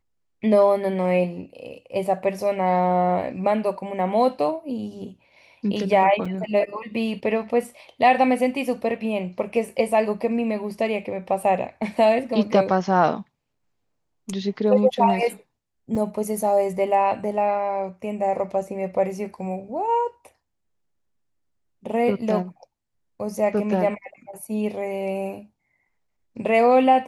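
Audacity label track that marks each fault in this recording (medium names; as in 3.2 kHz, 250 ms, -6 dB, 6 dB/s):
6.250000	6.250000	dropout 4.8 ms
15.950000	15.950000	dropout 4.1 ms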